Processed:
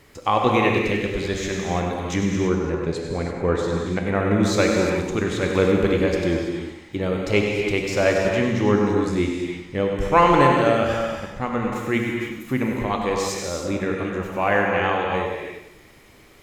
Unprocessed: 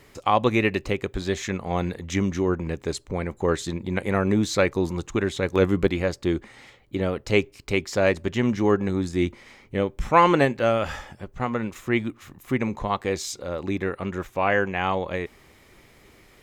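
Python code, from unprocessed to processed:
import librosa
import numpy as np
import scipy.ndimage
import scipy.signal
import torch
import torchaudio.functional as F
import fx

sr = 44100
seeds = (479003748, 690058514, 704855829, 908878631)

y = fx.lowpass(x, sr, hz=2900.0, slope=6, at=(2.35, 4.4))
y = fx.echo_feedback(y, sr, ms=97, feedback_pct=45, wet_db=-9.0)
y = fx.rev_gated(y, sr, seeds[0], gate_ms=360, shape='flat', drr_db=0.5)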